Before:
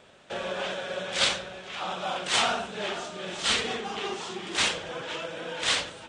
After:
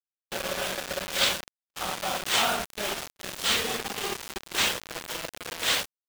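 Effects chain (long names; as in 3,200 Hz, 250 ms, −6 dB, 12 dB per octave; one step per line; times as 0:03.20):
bit reduction 5 bits
noise gate −42 dBFS, range −46 dB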